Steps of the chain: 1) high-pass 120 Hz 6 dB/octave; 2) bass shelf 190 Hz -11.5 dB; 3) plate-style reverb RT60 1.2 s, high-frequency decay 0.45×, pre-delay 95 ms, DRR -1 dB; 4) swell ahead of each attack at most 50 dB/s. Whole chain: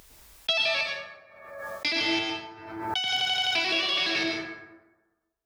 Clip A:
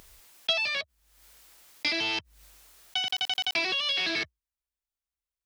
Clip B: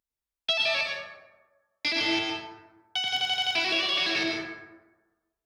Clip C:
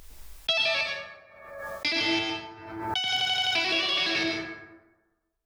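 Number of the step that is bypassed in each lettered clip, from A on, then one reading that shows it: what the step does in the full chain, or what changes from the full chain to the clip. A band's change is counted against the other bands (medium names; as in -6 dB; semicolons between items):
3, momentary loudness spread change -9 LU; 4, momentary loudness spread change -4 LU; 1, 125 Hz band +3.0 dB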